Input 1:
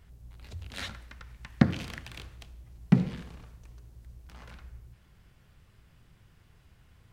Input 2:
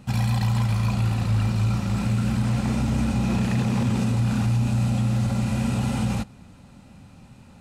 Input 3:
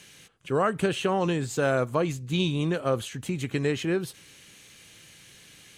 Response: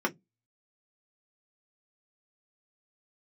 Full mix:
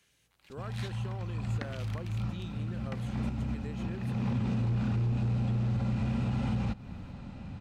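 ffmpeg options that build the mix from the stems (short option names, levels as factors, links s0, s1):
-filter_complex "[0:a]highpass=f=1000:p=1,volume=0.447[s0];[1:a]lowpass=3900,lowshelf=f=130:g=6,adelay=500,volume=1.26[s1];[2:a]volume=0.1,asplit=2[s2][s3];[s3]apad=whole_len=357555[s4];[s1][s4]sidechaincompress=threshold=0.001:ratio=12:attack=7:release=434[s5];[s0][s5][s2]amix=inputs=3:normalize=0,volume=5.01,asoftclip=hard,volume=0.2,acompressor=threshold=0.0447:ratio=12"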